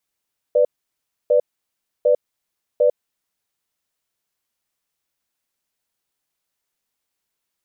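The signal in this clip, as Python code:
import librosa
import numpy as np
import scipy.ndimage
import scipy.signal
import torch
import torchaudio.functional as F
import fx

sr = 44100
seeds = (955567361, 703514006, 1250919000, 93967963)

y = fx.cadence(sr, length_s=2.78, low_hz=495.0, high_hz=591.0, on_s=0.1, off_s=0.65, level_db=-14.5)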